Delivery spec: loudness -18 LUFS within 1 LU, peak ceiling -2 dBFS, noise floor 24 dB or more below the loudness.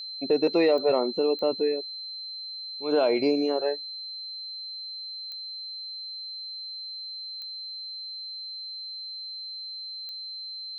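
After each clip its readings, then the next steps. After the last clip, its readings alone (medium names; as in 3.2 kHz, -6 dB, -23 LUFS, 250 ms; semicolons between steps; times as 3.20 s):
clicks found 5; steady tone 4.1 kHz; tone level -35 dBFS; loudness -29.5 LUFS; peak level -12.5 dBFS; loudness target -18.0 LUFS
-> de-click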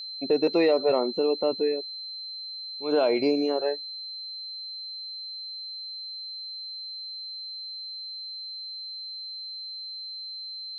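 clicks found 0; steady tone 4.1 kHz; tone level -35 dBFS
-> band-stop 4.1 kHz, Q 30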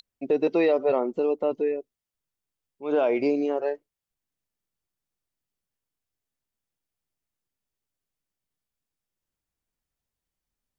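steady tone not found; loudness -25.0 LUFS; peak level -13.0 dBFS; loudness target -18.0 LUFS
-> trim +7 dB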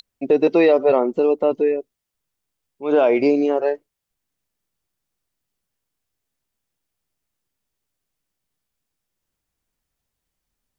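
loudness -18.0 LUFS; peak level -6.0 dBFS; noise floor -81 dBFS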